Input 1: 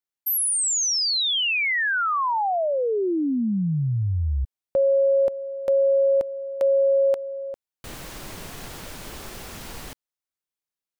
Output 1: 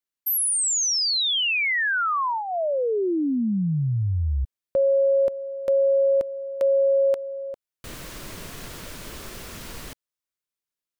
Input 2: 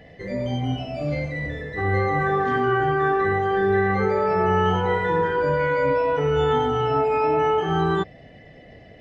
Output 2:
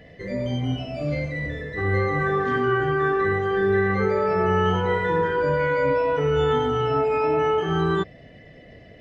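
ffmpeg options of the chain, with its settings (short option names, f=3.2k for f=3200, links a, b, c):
-af "equalizer=f=800:w=5.9:g=-8.5"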